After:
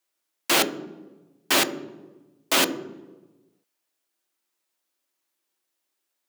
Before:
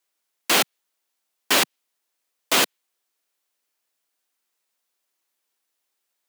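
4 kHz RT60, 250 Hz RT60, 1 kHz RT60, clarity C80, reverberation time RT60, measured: 0.70 s, 1.4 s, 1.0 s, 14.0 dB, 1.2 s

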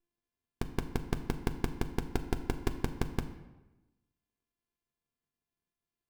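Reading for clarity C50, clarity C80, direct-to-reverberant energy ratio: 11.0 dB, 12.5 dB, 4.5 dB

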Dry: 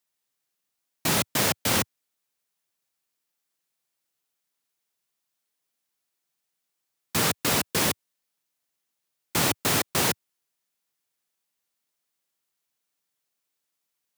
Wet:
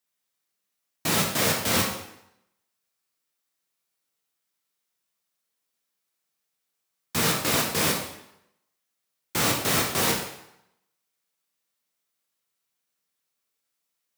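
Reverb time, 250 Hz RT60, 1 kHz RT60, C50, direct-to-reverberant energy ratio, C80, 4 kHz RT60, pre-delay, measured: 0.80 s, 0.75 s, 0.85 s, 4.5 dB, -1.0 dB, 7.5 dB, 0.70 s, 12 ms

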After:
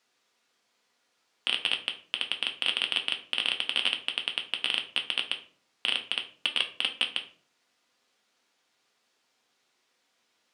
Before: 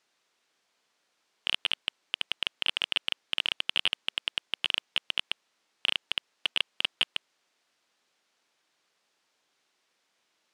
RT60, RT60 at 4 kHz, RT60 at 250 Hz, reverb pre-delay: 0.45 s, 0.30 s, 0.60 s, 4 ms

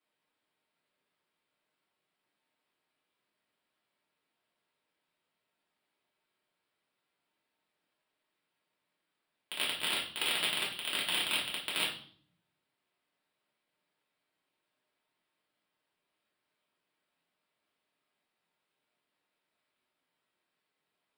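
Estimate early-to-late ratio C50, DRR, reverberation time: 6.5 dB, -5.5 dB, 0.50 s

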